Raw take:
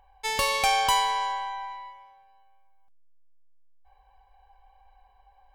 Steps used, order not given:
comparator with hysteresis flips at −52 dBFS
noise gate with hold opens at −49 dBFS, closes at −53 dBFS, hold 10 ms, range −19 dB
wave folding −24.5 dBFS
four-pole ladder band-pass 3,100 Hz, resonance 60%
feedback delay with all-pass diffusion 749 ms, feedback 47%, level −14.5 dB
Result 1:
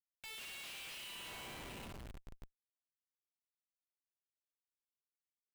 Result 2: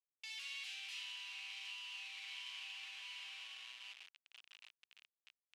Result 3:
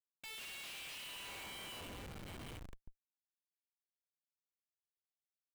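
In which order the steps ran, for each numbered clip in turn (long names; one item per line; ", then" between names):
wave folding, then feedback delay with all-pass diffusion, then noise gate with hold, then four-pole ladder band-pass, then comparator with hysteresis
noise gate with hold, then feedback delay with all-pass diffusion, then wave folding, then comparator with hysteresis, then four-pole ladder band-pass
feedback delay with all-pass diffusion, then wave folding, then four-pole ladder band-pass, then comparator with hysteresis, then noise gate with hold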